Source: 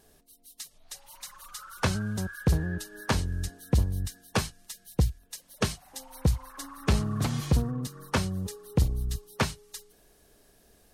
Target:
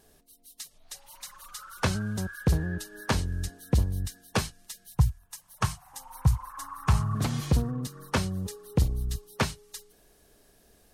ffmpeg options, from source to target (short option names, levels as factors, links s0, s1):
-filter_complex "[0:a]asettb=1/sr,asplit=3[s0][s1][s2];[s0]atrim=end=4.954[s3];[s1]atrim=start=4.95:end=7.15,asetpts=PTS-STARTPTS,afade=t=in:d=0.004:c=qsin,afade=t=out:st=2.196:d=0.004:c=qsin,equalizer=f=125:t=o:w=1:g=8,equalizer=f=250:t=o:w=1:g=-12,equalizer=f=500:t=o:w=1:g=-12,equalizer=f=1000:t=o:w=1:g=11,equalizer=f=2000:t=o:w=1:g=-3,equalizer=f=4000:t=o:w=1:g=-6[s4];[s2]atrim=start=7.146[s5];[s3][s4]acrossfade=d=0.004:c1=hsin:c2=qsin[s6];[s6][s5]acrossfade=d=0.004:c1=qsin:c2=hsin"